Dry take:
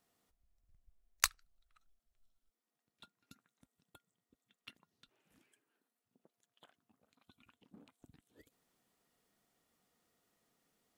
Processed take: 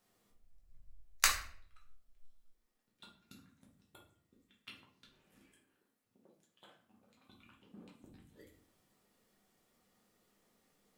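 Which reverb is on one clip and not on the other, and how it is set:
rectangular room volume 76 cubic metres, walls mixed, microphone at 1 metre

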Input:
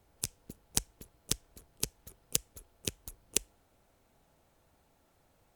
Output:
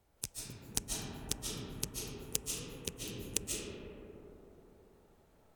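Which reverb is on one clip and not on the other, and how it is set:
comb and all-pass reverb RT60 3.7 s, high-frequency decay 0.25×, pre-delay 105 ms, DRR −4.5 dB
level −5 dB

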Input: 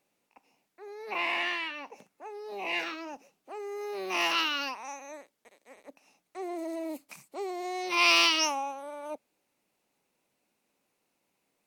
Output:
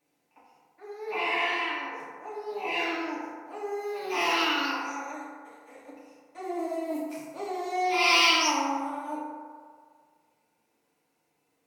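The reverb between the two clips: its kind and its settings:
feedback delay network reverb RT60 1.9 s, low-frequency decay 0.7×, high-frequency decay 0.35×, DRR −9.5 dB
level −6 dB

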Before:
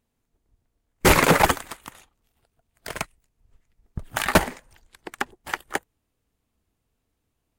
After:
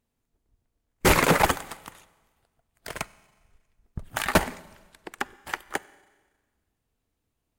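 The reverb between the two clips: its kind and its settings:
four-comb reverb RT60 1.4 s, combs from 31 ms, DRR 19.5 dB
level −3 dB

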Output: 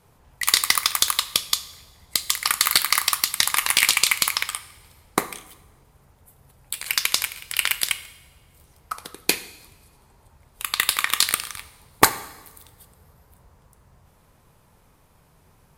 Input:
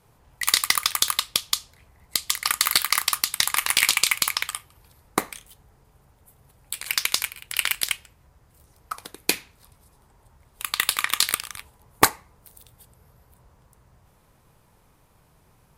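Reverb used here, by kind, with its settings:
coupled-rooms reverb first 0.94 s, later 2.5 s, from −19 dB, DRR 12.5 dB
level +1.5 dB

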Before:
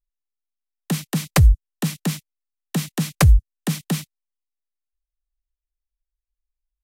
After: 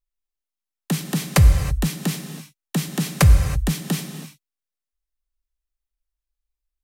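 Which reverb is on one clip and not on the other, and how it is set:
reverb whose tail is shaped and stops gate 350 ms flat, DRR 6.5 dB

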